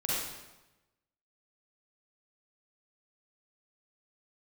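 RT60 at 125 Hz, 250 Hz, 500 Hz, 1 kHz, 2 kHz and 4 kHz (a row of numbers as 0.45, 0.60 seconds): 1.2, 1.1, 1.0, 1.0, 0.95, 0.85 seconds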